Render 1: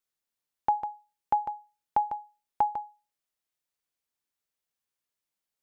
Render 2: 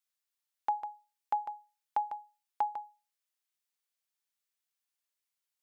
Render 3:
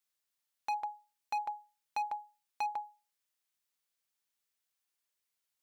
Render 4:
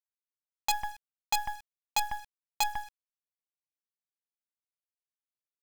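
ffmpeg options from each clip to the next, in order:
ffmpeg -i in.wav -af "highpass=frequency=1400:poles=1" out.wav
ffmpeg -i in.wav -af "asoftclip=type=hard:threshold=-32.5dB,volume=2dB" out.wav
ffmpeg -i in.wav -af "aresample=8000,aresample=44100,acrusher=bits=6:dc=4:mix=0:aa=0.000001,volume=6.5dB" out.wav

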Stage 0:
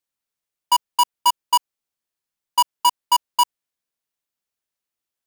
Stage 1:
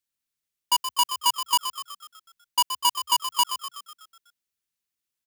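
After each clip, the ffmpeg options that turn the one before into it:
ffmpeg -i in.wav -filter_complex "[0:a]equalizer=frequency=690:width_type=o:width=1.8:gain=-9.5,asplit=8[link_01][link_02][link_03][link_04][link_05][link_06][link_07][link_08];[link_02]adelay=124,afreqshift=63,volume=-9.5dB[link_09];[link_03]adelay=248,afreqshift=126,volume=-14.5dB[link_10];[link_04]adelay=372,afreqshift=189,volume=-19.6dB[link_11];[link_05]adelay=496,afreqshift=252,volume=-24.6dB[link_12];[link_06]adelay=620,afreqshift=315,volume=-29.6dB[link_13];[link_07]adelay=744,afreqshift=378,volume=-34.7dB[link_14];[link_08]adelay=868,afreqshift=441,volume=-39.7dB[link_15];[link_01][link_09][link_10][link_11][link_12][link_13][link_14][link_15]amix=inputs=8:normalize=0" out.wav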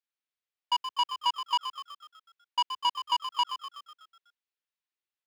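ffmpeg -i in.wav -filter_complex "[0:a]acrossover=split=340 4500:gain=0.0631 1 0.126[link_01][link_02][link_03];[link_01][link_02][link_03]amix=inputs=3:normalize=0,acrossover=split=7300[link_04][link_05];[link_05]acompressor=threshold=-52dB:ratio=4:attack=1:release=60[link_06];[link_04][link_06]amix=inputs=2:normalize=0,volume=-3.5dB" out.wav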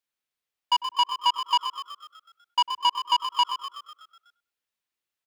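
ffmpeg -i in.wav -filter_complex "[0:a]asplit=2[link_01][link_02];[link_02]adelay=100,lowpass=frequency=950:poles=1,volume=-13dB,asplit=2[link_03][link_04];[link_04]adelay=100,lowpass=frequency=950:poles=1,volume=0.33,asplit=2[link_05][link_06];[link_06]adelay=100,lowpass=frequency=950:poles=1,volume=0.33[link_07];[link_01][link_03][link_05][link_07]amix=inputs=4:normalize=0,volume=5dB" out.wav

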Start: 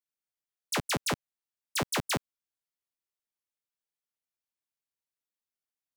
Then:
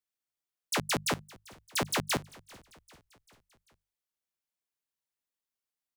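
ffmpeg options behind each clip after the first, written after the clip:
ffmpeg -i in.wav -filter_complex "[0:a]bandreject=frequency=50:width_type=h:width=6,bandreject=frequency=100:width_type=h:width=6,bandreject=frequency=150:width_type=h:width=6,bandreject=frequency=200:width_type=h:width=6,asplit=5[link_01][link_02][link_03][link_04][link_05];[link_02]adelay=393,afreqshift=-47,volume=-22.5dB[link_06];[link_03]adelay=786,afreqshift=-94,volume=-27.5dB[link_07];[link_04]adelay=1179,afreqshift=-141,volume=-32.6dB[link_08];[link_05]adelay=1572,afreqshift=-188,volume=-37.6dB[link_09];[link_01][link_06][link_07][link_08][link_09]amix=inputs=5:normalize=0" out.wav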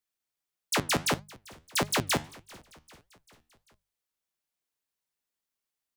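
ffmpeg -i in.wav -af "flanger=delay=4.7:depth=8.5:regen=82:speed=1.6:shape=sinusoidal,volume=7.5dB" out.wav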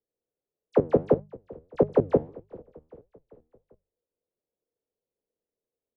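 ffmpeg -i in.wav -af "lowpass=frequency=480:width_type=q:width=4.9,volume=3.5dB" out.wav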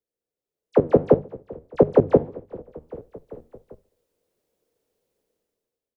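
ffmpeg -i in.wav -af "dynaudnorm=framelen=200:gausssize=7:maxgain=15.5dB,aecho=1:1:70|140|210|280:0.0631|0.036|0.0205|0.0117,volume=-1dB" out.wav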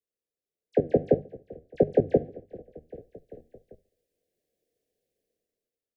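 ffmpeg -i in.wav -af "asuperstop=centerf=1100:order=20:qfactor=1.4,volume=-6dB" out.wav

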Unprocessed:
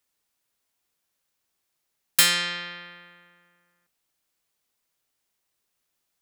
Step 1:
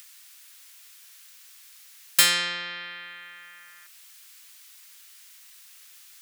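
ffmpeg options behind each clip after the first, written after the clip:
ffmpeg -i in.wav -filter_complex "[0:a]highpass=200,acrossover=split=1300[link_01][link_02];[link_02]acompressor=mode=upward:threshold=-28dB:ratio=2.5[link_03];[link_01][link_03]amix=inputs=2:normalize=0" out.wav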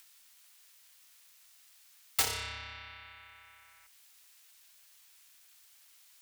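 ffmpeg -i in.wav -af "aeval=exprs='val(0)*sin(2*PI*420*n/s)':channel_layout=same,lowshelf=frequency=110:width_type=q:width=1.5:gain=12.5,aeval=exprs='0.596*(cos(1*acos(clip(val(0)/0.596,-1,1)))-cos(1*PI/2))+0.168*(cos(7*acos(clip(val(0)/0.596,-1,1)))-cos(7*PI/2))':channel_layout=same,volume=-7dB" out.wav

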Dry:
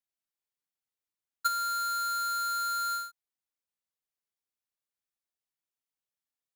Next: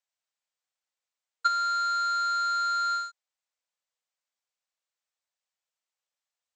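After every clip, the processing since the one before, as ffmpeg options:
ffmpeg -i in.wav -filter_complex "[0:a]acrossover=split=5000[link_01][link_02];[link_02]acompressor=threshold=-48dB:ratio=4:attack=1:release=60[link_03];[link_01][link_03]amix=inputs=2:normalize=0,afftfilt=real='re*between(b*sr/4096,470,8500)':imag='im*between(b*sr/4096,470,8500)':win_size=4096:overlap=0.75,volume=4.5dB" out.wav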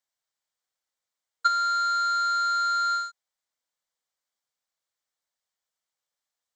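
ffmpeg -i in.wav -af "equalizer=frequency=2600:width=6.9:gain=-9,volume=2.5dB" out.wav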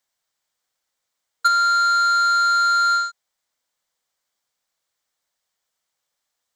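ffmpeg -i in.wav -af "asoftclip=type=tanh:threshold=-20dB,volume=8.5dB" out.wav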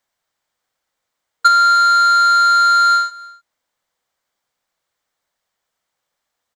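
ffmpeg -i in.wav -filter_complex "[0:a]asplit=2[link_01][link_02];[link_02]adynamicsmooth=sensitivity=1.5:basefreq=3700,volume=1dB[link_03];[link_01][link_03]amix=inputs=2:normalize=0,aecho=1:1:299:0.0708" out.wav

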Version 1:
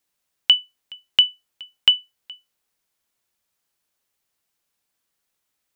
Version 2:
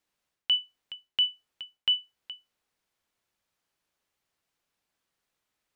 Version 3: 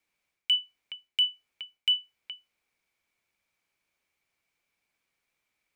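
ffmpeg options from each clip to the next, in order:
ffmpeg -i in.wav -af "lowpass=frequency=3600:poles=1,areverse,acompressor=threshold=-22dB:ratio=12,areverse" out.wav
ffmpeg -i in.wav -filter_complex "[0:a]equalizer=frequency=2300:width=7.4:gain=15,acrossover=split=170|2100[link_01][link_02][link_03];[link_02]aeval=exprs='0.0251*(abs(mod(val(0)/0.0251+3,4)-2)-1)':channel_layout=same[link_04];[link_01][link_04][link_03]amix=inputs=3:normalize=0,volume=-1dB" out.wav

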